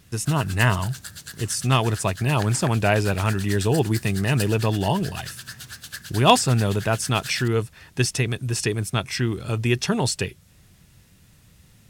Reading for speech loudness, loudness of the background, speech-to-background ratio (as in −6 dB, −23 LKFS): −23.0 LKFS, −36.5 LKFS, 13.5 dB